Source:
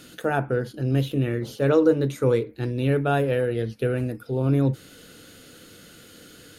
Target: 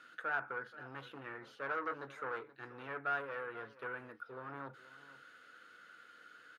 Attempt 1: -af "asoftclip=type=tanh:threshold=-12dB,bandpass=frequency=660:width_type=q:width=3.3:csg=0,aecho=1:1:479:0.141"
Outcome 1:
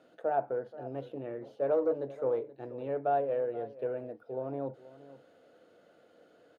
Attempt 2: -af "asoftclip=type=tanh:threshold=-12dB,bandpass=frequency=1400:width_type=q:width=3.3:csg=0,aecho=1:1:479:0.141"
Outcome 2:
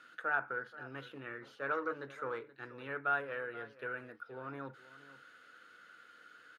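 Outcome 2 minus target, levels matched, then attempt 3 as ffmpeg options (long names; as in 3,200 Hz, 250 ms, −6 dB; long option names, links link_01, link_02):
soft clipping: distortion −10 dB
-af "asoftclip=type=tanh:threshold=-21dB,bandpass=frequency=1400:width_type=q:width=3.3:csg=0,aecho=1:1:479:0.141"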